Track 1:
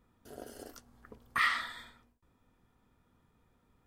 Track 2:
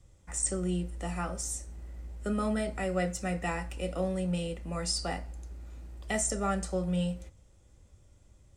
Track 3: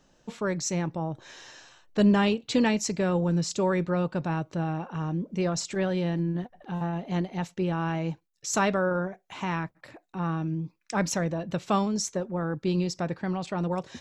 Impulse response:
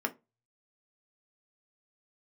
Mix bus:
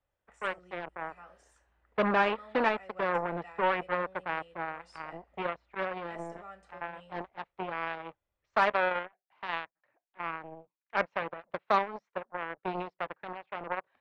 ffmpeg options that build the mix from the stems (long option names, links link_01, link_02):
-filter_complex "[0:a]acompressor=threshold=-34dB:ratio=6,adelay=800,volume=-16dB,asplit=2[link_01][link_02];[link_02]volume=-12dB[link_03];[1:a]volume=-14dB[link_04];[2:a]lowpass=2100,lowshelf=frequency=100:gain=-3.5,aeval=exprs='0.224*(cos(1*acos(clip(val(0)/0.224,-1,1)))-cos(1*PI/2))+0.00158*(cos(5*acos(clip(val(0)/0.224,-1,1)))-cos(5*PI/2))+0.0355*(cos(7*acos(clip(val(0)/0.224,-1,1)))-cos(7*PI/2))':channel_layout=same,volume=3dB[link_05];[link_03]aecho=0:1:1038|2076|3114|4152|5190|6228:1|0.43|0.185|0.0795|0.0342|0.0147[link_06];[link_01][link_04][link_05][link_06]amix=inputs=4:normalize=0,acrossover=split=530 3400:gain=0.158 1 0.0708[link_07][link_08][link_09];[link_07][link_08][link_09]amix=inputs=3:normalize=0"